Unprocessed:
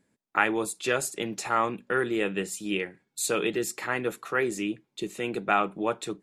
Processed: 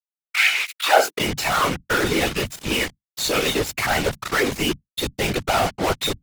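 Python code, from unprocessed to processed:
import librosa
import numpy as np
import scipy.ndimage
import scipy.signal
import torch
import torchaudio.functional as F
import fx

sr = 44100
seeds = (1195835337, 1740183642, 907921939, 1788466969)

y = np.convolve(x, np.full(5, 1.0 / 5))[:len(x)]
y = fx.peak_eq(y, sr, hz=180.0, db=-12.0, octaves=2.5)
y = fx.notch(y, sr, hz=1500.0, q=9.6)
y = fx.comb_fb(y, sr, f0_hz=740.0, decay_s=0.31, harmonics='all', damping=0.0, mix_pct=90)
y = fx.fuzz(y, sr, gain_db=65.0, gate_db=-58.0)
y = fx.filter_sweep_highpass(y, sr, from_hz=2300.0, to_hz=100.0, start_s=0.72, end_s=1.33, q=6.2)
y = fx.whisperise(y, sr, seeds[0])
y = F.gain(torch.from_numpy(y), -5.0).numpy()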